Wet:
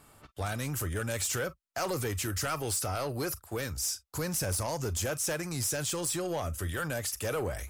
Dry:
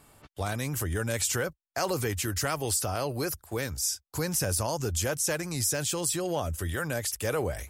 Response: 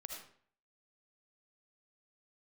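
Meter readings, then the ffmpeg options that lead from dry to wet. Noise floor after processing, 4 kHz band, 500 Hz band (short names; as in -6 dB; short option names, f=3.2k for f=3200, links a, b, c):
-65 dBFS, -3.0 dB, -3.0 dB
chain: -filter_complex "[0:a]equalizer=f=1.3k:t=o:w=0.3:g=4,asoftclip=type=tanh:threshold=-24.5dB,asplit=2[a][b];[1:a]atrim=start_sample=2205,afade=t=out:st=0.14:d=0.01,atrim=end_sample=6615,asetrate=83790,aresample=44100[c];[b][c]afir=irnorm=-1:irlink=0,volume=0.5dB[d];[a][d]amix=inputs=2:normalize=0,volume=-3dB"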